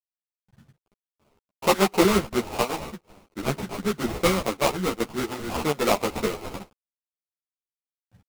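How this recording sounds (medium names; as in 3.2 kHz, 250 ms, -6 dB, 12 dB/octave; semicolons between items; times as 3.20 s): a quantiser's noise floor 10-bit, dither none; chopped level 2.6 Hz, depth 65%, duty 85%; aliases and images of a low sample rate 1.7 kHz, jitter 20%; a shimmering, thickened sound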